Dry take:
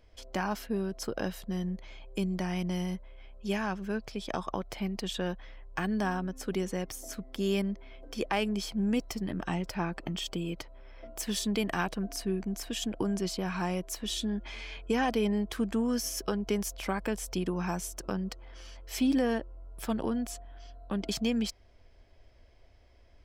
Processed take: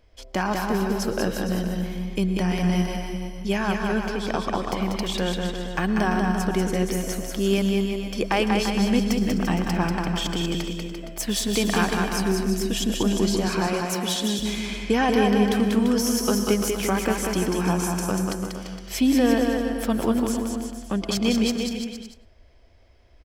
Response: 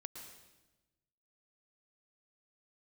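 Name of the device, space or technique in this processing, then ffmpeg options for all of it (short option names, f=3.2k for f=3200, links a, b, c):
keyed gated reverb: -filter_complex "[0:a]asplit=3[a][b][c];[1:a]atrim=start_sample=2205[d];[b][d]afir=irnorm=-1:irlink=0[e];[c]apad=whole_len=1024900[f];[e][f]sidechaingate=range=-33dB:threshold=-45dB:ratio=16:detection=peak,volume=3dB[g];[a][g]amix=inputs=2:normalize=0,asettb=1/sr,asplit=3[h][i][j];[h]atrim=end=13.484[k];[i]atrim=start=13.48:end=14.39,asetpts=PTS-STARTPTS,afade=t=in:d=0.004:c=qsin,afade=t=out:st=0.906:d=0.004:c=qsin,highpass=160[l];[j]atrim=start=14.386[m];[k][l]acrossfade=d=0.004:c1=hsin:c2=qsin[n];[n][m]acrossfade=d=0.004:c1=qsin:c2=hsin,aecho=1:1:190|342|463.6|560.9|638.7:0.631|0.398|0.251|0.158|0.1,volume=2dB"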